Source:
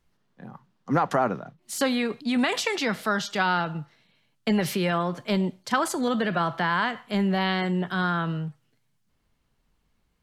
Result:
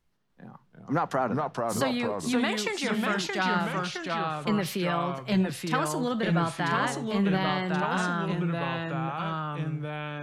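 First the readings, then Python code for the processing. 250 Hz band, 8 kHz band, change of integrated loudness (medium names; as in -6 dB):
-1.5 dB, -1.5 dB, -2.5 dB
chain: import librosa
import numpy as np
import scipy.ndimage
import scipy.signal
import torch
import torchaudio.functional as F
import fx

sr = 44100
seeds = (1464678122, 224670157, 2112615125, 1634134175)

y = fx.echo_pitch(x, sr, ms=298, semitones=-2, count=2, db_per_echo=-3.0)
y = y * 10.0 ** (-4.0 / 20.0)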